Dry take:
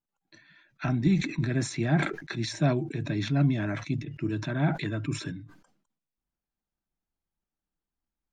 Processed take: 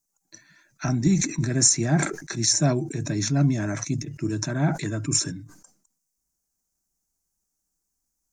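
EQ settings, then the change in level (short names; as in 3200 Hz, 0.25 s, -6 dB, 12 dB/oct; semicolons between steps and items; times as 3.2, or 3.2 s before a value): resonant high shelf 4600 Hz +12 dB, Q 3; +3.0 dB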